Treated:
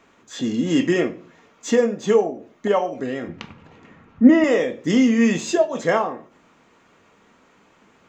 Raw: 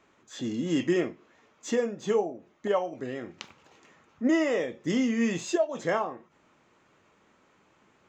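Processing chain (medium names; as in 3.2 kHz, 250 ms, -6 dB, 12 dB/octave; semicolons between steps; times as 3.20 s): 3.28–4.44 s: tone controls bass +12 dB, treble -14 dB; reverberation, pre-delay 4 ms, DRR 10 dB; trim +7.5 dB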